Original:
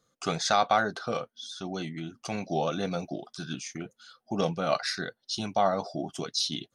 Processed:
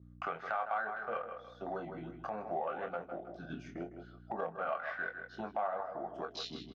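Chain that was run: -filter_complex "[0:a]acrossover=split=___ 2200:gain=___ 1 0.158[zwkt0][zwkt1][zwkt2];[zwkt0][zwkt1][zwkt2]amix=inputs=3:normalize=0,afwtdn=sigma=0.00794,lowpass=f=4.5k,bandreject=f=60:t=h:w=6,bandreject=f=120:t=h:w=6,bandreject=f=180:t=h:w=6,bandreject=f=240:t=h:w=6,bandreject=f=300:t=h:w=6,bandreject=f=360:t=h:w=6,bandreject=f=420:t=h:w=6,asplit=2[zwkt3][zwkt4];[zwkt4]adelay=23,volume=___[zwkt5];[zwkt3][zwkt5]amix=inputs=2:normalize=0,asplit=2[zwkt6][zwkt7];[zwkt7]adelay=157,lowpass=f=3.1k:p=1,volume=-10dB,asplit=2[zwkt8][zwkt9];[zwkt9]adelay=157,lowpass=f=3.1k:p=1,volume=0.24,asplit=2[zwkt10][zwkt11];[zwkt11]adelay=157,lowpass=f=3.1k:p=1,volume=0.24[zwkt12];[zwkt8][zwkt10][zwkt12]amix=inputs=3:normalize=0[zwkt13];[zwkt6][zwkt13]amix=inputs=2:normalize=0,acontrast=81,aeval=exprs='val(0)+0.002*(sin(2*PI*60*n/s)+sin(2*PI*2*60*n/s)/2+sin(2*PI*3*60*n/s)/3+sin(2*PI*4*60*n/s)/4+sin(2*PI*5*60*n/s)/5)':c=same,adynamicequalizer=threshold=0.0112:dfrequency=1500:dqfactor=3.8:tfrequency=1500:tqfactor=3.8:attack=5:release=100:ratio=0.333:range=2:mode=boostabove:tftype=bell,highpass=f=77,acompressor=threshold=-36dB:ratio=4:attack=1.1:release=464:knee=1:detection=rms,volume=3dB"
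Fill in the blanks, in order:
500, 0.141, -7dB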